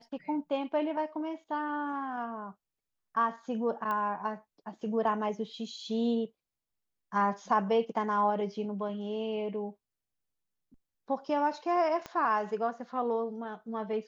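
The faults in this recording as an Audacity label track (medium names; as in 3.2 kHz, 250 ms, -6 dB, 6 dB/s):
3.910000	3.910000	pop -22 dBFS
12.060000	12.060000	pop -24 dBFS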